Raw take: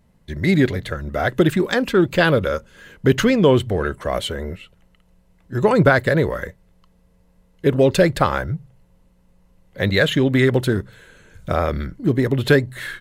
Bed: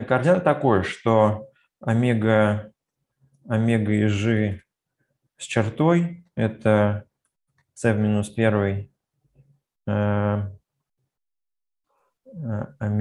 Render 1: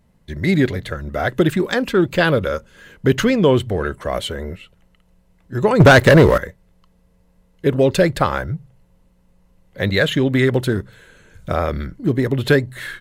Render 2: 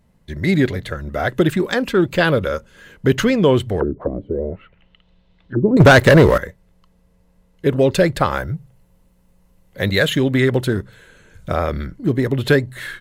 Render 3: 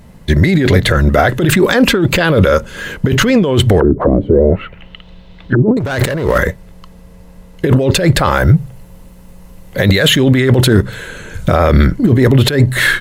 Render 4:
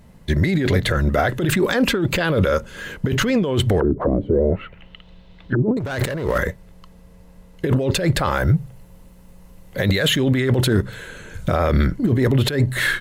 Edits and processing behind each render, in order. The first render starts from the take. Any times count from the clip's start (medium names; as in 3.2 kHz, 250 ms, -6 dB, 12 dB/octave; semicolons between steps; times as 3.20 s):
5.80–6.38 s: waveshaping leveller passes 3
3.80–5.77 s: touch-sensitive low-pass 290–3900 Hz down, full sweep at -20.5 dBFS; 8.30–10.29 s: treble shelf 10 kHz -> 6.8 kHz +8.5 dB
compressor with a negative ratio -22 dBFS, ratio -1; loudness maximiser +13.5 dB
trim -8 dB